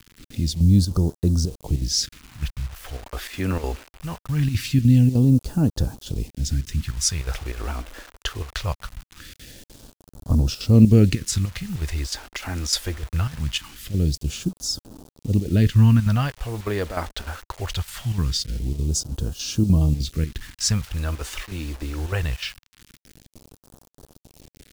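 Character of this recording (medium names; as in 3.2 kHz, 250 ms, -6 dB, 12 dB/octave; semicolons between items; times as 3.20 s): chopped level 3.3 Hz, depth 65%, duty 80%; a quantiser's noise floor 8-bit, dither none; phasing stages 2, 0.22 Hz, lowest notch 130–2100 Hz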